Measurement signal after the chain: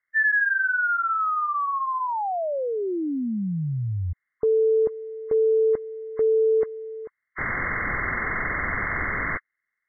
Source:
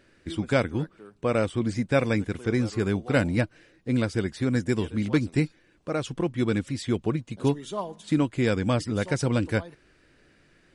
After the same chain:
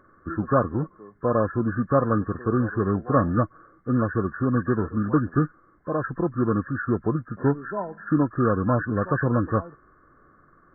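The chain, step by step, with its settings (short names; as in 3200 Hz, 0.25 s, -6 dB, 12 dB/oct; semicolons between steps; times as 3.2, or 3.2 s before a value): nonlinear frequency compression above 1000 Hz 4:1; gain +2 dB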